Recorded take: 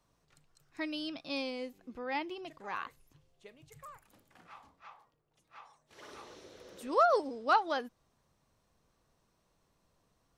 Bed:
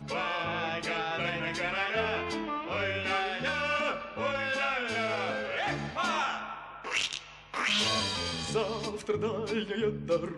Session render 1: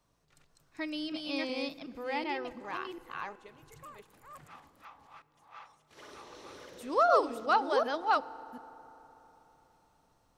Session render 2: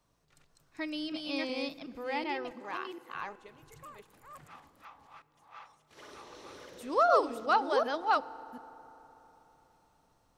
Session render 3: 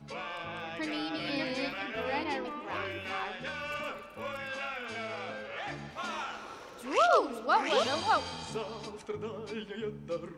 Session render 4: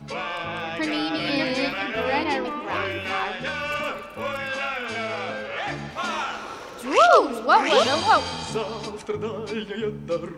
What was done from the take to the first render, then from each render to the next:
delay that plays each chunk backwards 373 ms, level −1 dB; feedback delay network reverb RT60 3.8 s, high-frequency decay 0.5×, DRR 17.5 dB
0:02.51–0:03.15: high-pass filter 190 Hz
mix in bed −7.5 dB
level +9.5 dB

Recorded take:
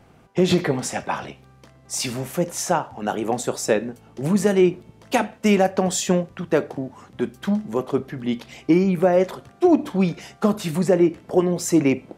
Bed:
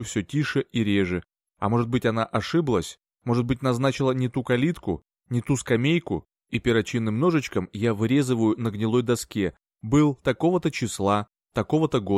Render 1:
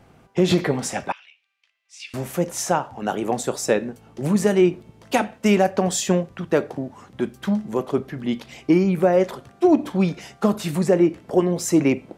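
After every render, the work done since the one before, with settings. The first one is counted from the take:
0:01.12–0:02.14: four-pole ladder band-pass 2,900 Hz, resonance 55%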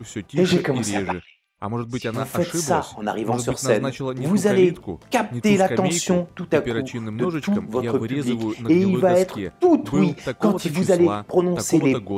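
mix in bed −4 dB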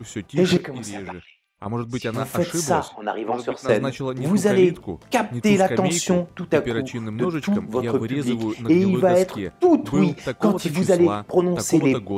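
0:00.57–0:01.66: downward compressor 3 to 1, threshold −31 dBFS
0:02.88–0:03.69: three-way crossover with the lows and the highs turned down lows −18 dB, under 260 Hz, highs −22 dB, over 4,000 Hz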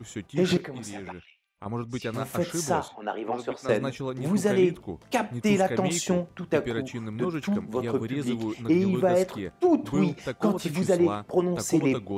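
level −5.5 dB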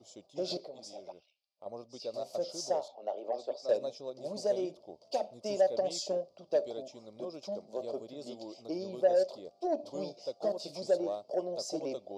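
pair of resonant band-passes 1,700 Hz, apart 3 octaves
in parallel at −4 dB: soft clipping −28 dBFS, distortion −12 dB

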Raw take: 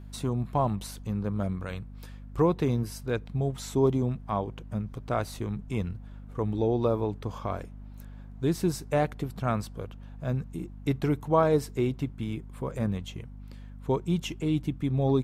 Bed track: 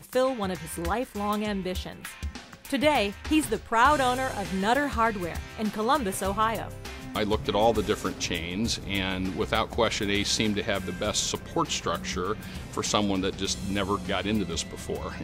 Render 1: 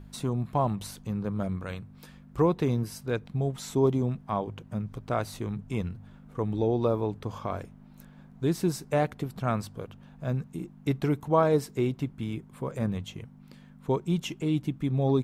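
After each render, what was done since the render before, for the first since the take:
hum removal 50 Hz, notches 2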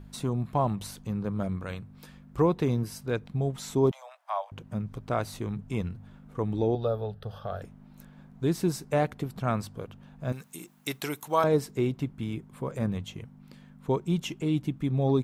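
0:03.91–0:04.52: Butterworth high-pass 570 Hz 96 dB per octave
0:06.75–0:07.62: phaser with its sweep stopped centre 1,500 Hz, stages 8
0:10.32–0:11.44: spectral tilt +4.5 dB per octave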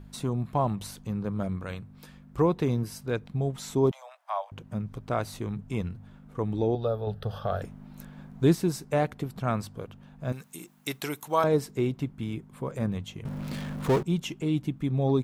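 0:07.07–0:08.55: clip gain +5.5 dB
0:13.25–0:14.03: power curve on the samples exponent 0.5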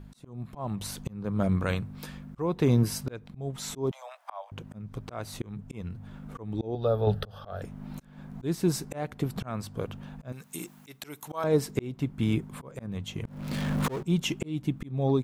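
volume swells 529 ms
automatic gain control gain up to 8 dB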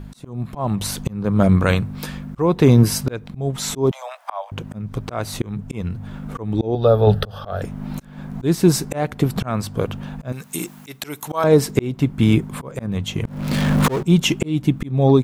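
level +11.5 dB
brickwall limiter −3 dBFS, peak gain reduction 2 dB

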